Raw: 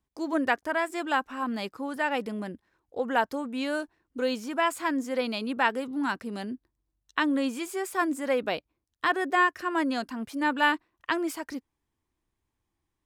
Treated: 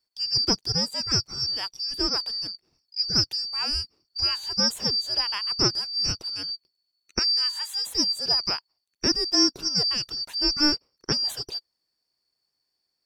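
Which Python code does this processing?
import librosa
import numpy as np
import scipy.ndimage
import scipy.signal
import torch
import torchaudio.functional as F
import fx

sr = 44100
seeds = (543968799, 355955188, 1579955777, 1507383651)

y = fx.band_shuffle(x, sr, order='2341')
y = fx.highpass(y, sr, hz=1200.0, slope=12, at=(7.19, 7.86))
y = y * librosa.db_to_amplitude(2.5)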